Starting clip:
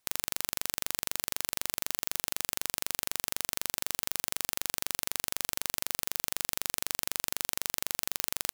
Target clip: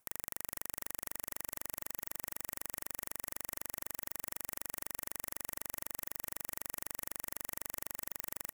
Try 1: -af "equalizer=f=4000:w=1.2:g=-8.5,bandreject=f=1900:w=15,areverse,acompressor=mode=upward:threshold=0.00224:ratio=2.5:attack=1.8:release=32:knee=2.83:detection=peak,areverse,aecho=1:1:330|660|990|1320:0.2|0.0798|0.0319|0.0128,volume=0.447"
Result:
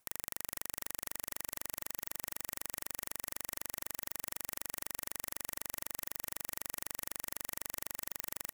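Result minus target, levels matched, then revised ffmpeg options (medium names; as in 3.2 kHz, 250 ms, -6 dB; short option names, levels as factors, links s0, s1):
4 kHz band +3.5 dB
-af "equalizer=f=4000:w=1.2:g=-14.5,bandreject=f=1900:w=15,areverse,acompressor=mode=upward:threshold=0.00224:ratio=2.5:attack=1.8:release=32:knee=2.83:detection=peak,areverse,aecho=1:1:330|660|990|1320:0.2|0.0798|0.0319|0.0128,volume=0.447"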